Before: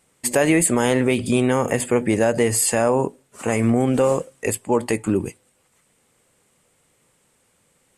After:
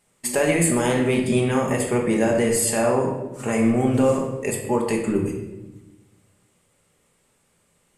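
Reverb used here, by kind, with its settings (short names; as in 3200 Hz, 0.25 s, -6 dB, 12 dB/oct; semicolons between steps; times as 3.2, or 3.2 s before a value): shoebox room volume 520 m³, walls mixed, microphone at 1.3 m; gain -4.5 dB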